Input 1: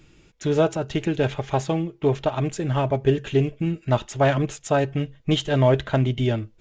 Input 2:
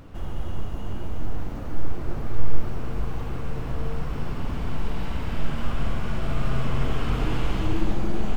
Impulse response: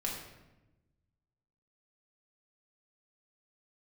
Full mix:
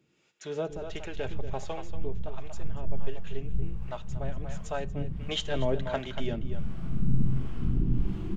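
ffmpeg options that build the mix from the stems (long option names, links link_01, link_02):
-filter_complex "[0:a]highpass=210,equalizer=frequency=300:width_type=o:width=0.35:gain=-6.5,volume=1.5dB,afade=type=out:start_time=1.8:duration=0.31:silence=0.473151,afade=type=in:start_time=4.59:duration=0.51:silence=0.334965,asplit=4[link_01][link_02][link_03][link_04];[link_02]volume=-22dB[link_05];[link_03]volume=-9dB[link_06];[1:a]afwtdn=0.1,equalizer=frequency=180:width=2.4:gain=8,adelay=550,volume=-2dB,asplit=2[link_07][link_08];[link_08]volume=-5dB[link_09];[link_04]apad=whole_len=393350[link_10];[link_07][link_10]sidechaincompress=threshold=-41dB:ratio=8:attack=16:release=271[link_11];[2:a]atrim=start_sample=2205[link_12];[link_05][link_12]afir=irnorm=-1:irlink=0[link_13];[link_06][link_09]amix=inputs=2:normalize=0,aecho=0:1:236:1[link_14];[link_01][link_11][link_13][link_14]amix=inputs=4:normalize=0,acrossover=split=470[link_15][link_16];[link_15]aeval=exprs='val(0)*(1-0.7/2+0.7/2*cos(2*PI*1.4*n/s))':channel_layout=same[link_17];[link_16]aeval=exprs='val(0)*(1-0.7/2-0.7/2*cos(2*PI*1.4*n/s))':channel_layout=same[link_18];[link_17][link_18]amix=inputs=2:normalize=0"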